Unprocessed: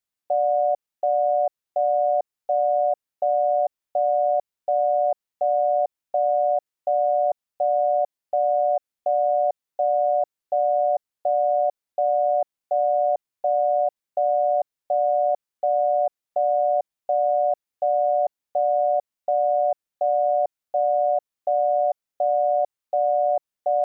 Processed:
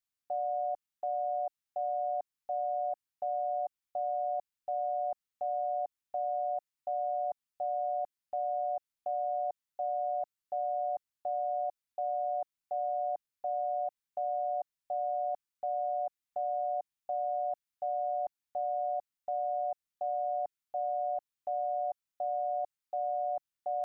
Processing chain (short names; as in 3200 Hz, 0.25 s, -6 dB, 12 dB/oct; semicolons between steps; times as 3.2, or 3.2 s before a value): bell 520 Hz -13.5 dB 0.92 oct; gain -4 dB